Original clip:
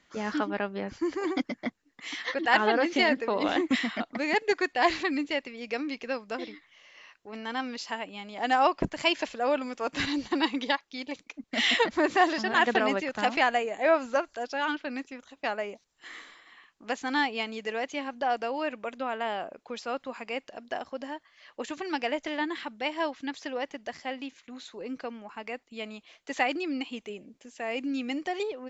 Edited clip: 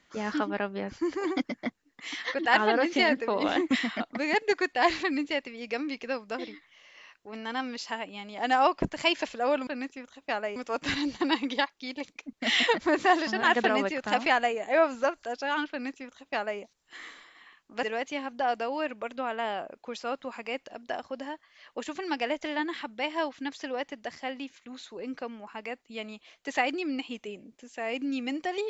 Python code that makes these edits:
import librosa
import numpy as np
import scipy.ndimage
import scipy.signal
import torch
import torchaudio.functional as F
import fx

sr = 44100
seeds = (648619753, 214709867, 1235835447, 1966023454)

y = fx.edit(x, sr, fx.duplicate(start_s=14.82, length_s=0.89, to_s=9.67),
    fx.cut(start_s=16.94, length_s=0.71), tone=tone)